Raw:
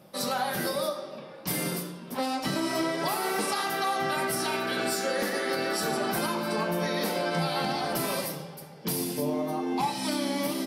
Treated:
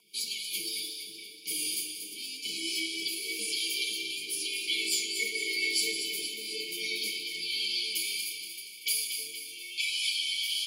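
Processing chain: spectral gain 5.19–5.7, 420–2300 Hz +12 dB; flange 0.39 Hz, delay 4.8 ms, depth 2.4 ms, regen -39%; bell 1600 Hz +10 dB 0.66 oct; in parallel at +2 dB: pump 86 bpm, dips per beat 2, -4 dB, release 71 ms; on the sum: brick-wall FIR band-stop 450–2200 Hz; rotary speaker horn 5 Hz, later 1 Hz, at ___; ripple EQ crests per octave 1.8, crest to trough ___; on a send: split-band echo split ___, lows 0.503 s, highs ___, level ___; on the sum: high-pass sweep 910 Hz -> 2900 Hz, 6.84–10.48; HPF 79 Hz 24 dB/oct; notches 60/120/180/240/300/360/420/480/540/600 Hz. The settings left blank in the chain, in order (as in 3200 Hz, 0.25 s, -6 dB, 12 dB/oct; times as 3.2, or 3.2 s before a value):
0.74, 11 dB, 380 Hz, 0.235 s, -8 dB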